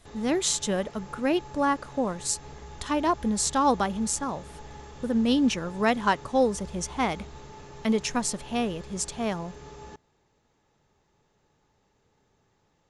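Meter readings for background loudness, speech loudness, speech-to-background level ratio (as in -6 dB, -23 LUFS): -45.5 LUFS, -27.0 LUFS, 18.5 dB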